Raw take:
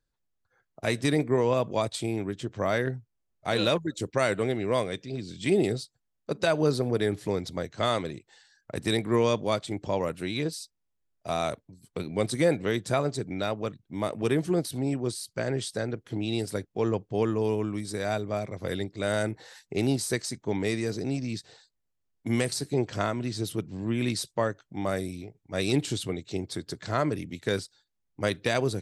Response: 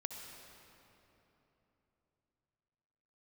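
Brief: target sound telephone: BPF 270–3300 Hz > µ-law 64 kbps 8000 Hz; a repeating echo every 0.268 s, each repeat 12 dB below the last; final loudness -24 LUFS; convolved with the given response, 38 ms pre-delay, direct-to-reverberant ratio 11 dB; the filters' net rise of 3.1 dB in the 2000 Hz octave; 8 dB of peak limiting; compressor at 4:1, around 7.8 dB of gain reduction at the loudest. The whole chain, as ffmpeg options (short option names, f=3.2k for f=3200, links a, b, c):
-filter_complex "[0:a]equalizer=f=2k:t=o:g=4.5,acompressor=threshold=-28dB:ratio=4,alimiter=limit=-21.5dB:level=0:latency=1,aecho=1:1:268|536|804:0.251|0.0628|0.0157,asplit=2[a][b];[1:a]atrim=start_sample=2205,adelay=38[c];[b][c]afir=irnorm=-1:irlink=0,volume=-10dB[d];[a][d]amix=inputs=2:normalize=0,highpass=270,lowpass=3.3k,volume=12.5dB" -ar 8000 -c:a pcm_mulaw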